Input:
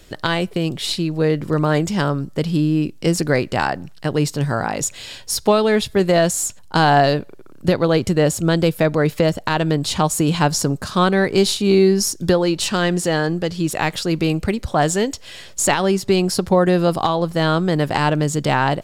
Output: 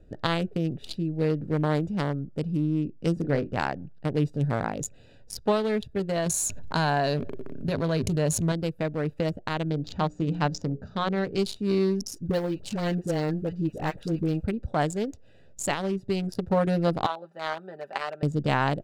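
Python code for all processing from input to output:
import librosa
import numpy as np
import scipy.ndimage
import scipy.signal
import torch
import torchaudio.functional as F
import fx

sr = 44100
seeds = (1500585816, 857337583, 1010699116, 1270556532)

y = fx.chain(x, sr, fx.high_shelf(hz=2200.0, db=-9.0),
    fx.doubler(ms=36.0, db=-8.0), at=(3.13, 3.57))
y = fx.chain(y, sr, fx.ripple_eq(per_octave=1.5, db=7),
    fx.env_flatten(amount_pct=70), at=(6.26, 8.52))
y = fx.chain(y, sr, fx.steep_lowpass(hz=7000.0, slope=48),
    fx.hum_notches(base_hz=60, count=9), at=(9.63, 11.39))
y = fx.chain(y, sr, fx.mod_noise(seeds[0], snr_db=30),
    fx.dispersion(late='highs', ms=51.0, hz=710.0), at=(12.01, 14.44))
y = fx.chain(y, sr, fx.highpass(hz=940.0, slope=12),
    fx.high_shelf(hz=3900.0, db=-11.5),
    fx.comb(ms=5.1, depth=0.68), at=(17.06, 18.23))
y = fx.wiener(y, sr, points=41)
y = fx.notch(y, sr, hz=360.0, q=12.0)
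y = fx.rider(y, sr, range_db=10, speed_s=2.0)
y = F.gain(torch.from_numpy(y), -9.0).numpy()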